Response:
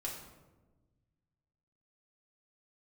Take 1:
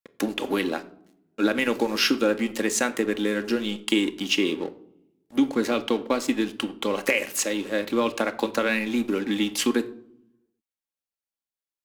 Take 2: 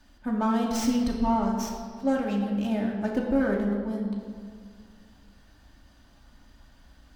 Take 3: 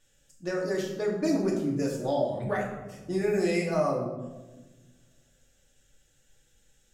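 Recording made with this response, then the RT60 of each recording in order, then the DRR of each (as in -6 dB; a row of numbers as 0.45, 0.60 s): 3; 0.70, 1.9, 1.2 s; 7.5, -2.5, -3.5 dB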